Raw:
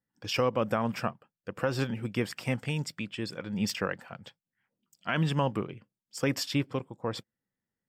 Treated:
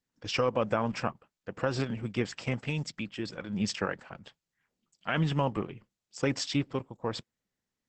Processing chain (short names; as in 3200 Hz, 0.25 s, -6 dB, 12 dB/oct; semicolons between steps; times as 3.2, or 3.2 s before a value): dynamic EQ 810 Hz, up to +3 dB, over -46 dBFS, Q 6.6; Opus 10 kbps 48000 Hz